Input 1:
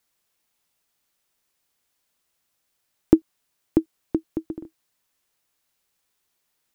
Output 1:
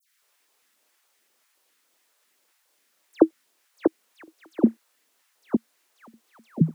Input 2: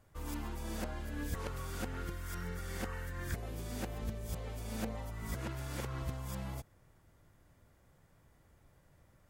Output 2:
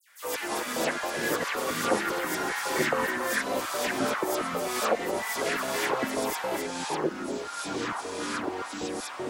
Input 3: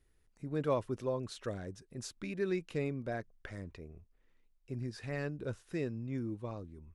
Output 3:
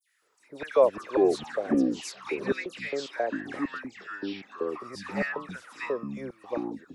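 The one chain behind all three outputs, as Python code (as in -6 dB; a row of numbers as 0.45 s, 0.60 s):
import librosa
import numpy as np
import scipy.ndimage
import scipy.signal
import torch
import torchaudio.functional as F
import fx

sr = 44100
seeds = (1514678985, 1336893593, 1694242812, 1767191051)

y = fx.filter_lfo_highpass(x, sr, shape='square', hz=3.7, low_hz=510.0, high_hz=1800.0, q=2.4)
y = fx.dispersion(y, sr, late='lows', ms=91.0, hz=2800.0)
y = fx.echo_pitch(y, sr, ms=88, semitones=-6, count=2, db_per_echo=-3.0)
y = y * 10.0 ** (-30 / 20.0) / np.sqrt(np.mean(np.square(y)))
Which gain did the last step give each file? +3.0 dB, +13.0 dB, +6.0 dB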